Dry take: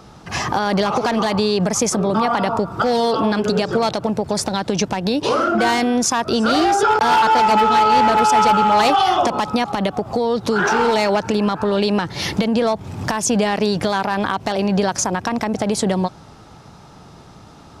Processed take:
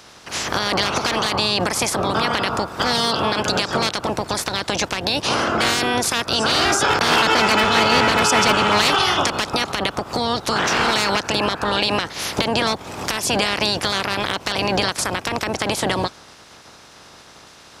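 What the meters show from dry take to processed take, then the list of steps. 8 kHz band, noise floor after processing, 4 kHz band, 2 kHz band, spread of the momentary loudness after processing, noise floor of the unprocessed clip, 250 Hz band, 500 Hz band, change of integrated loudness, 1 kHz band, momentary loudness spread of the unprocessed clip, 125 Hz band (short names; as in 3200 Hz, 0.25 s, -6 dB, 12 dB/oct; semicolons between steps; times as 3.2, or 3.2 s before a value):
+0.5 dB, -45 dBFS, +6.5 dB, +3.5 dB, 8 LU, -43 dBFS, -6.0 dB, -4.0 dB, -1.0 dB, -4.0 dB, 8 LU, -2.5 dB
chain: spectral limiter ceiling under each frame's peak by 22 dB; HPF 47 Hz; gain -2 dB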